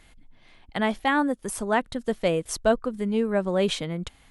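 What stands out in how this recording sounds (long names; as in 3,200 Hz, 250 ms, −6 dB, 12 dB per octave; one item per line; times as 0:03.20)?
background noise floor −56 dBFS
spectral slope −4.5 dB per octave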